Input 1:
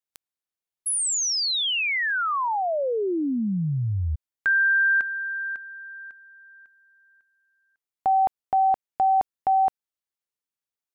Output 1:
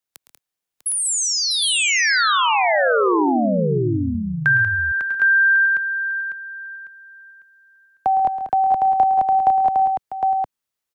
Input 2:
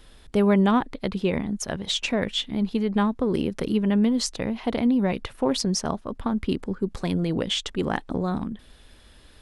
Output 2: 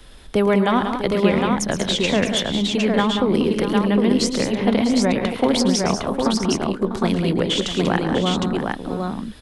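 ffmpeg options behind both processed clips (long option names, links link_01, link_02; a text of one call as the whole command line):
ffmpeg -i in.wav -filter_complex "[0:a]acrossover=split=120|330|1700[link_01][link_02][link_03][link_04];[link_01]acompressor=threshold=-44dB:ratio=4[link_05];[link_02]acompressor=threshold=-29dB:ratio=4[link_06];[link_03]acompressor=threshold=-23dB:ratio=4[link_07];[link_04]acompressor=threshold=-27dB:ratio=4[link_08];[link_05][link_06][link_07][link_08]amix=inputs=4:normalize=0,aecho=1:1:111|135|189|216|647|759:0.266|0.2|0.398|0.1|0.266|0.668,volume=6dB" out.wav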